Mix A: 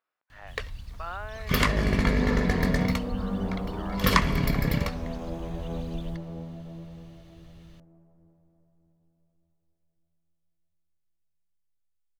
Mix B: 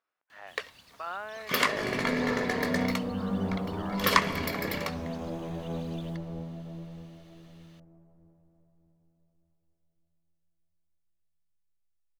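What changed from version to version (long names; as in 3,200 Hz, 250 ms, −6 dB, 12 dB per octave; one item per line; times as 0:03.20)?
first sound: add high-pass filter 360 Hz 12 dB per octave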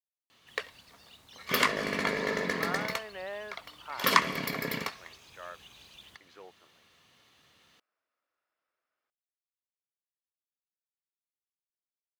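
speech: entry +1.60 s
second sound: muted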